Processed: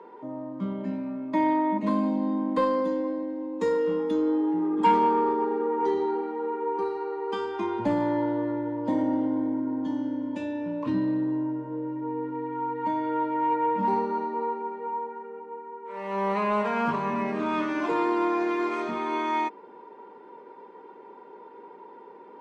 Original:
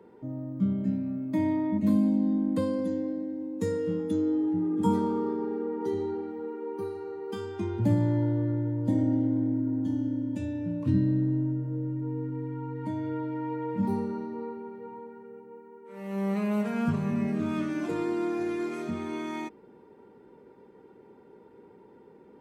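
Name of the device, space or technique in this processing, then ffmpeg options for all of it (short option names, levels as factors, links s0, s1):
intercom: -af "highpass=410,lowpass=4100,equalizer=f=1000:t=o:w=0.27:g=11.5,asoftclip=type=tanh:threshold=0.0891,volume=2.51"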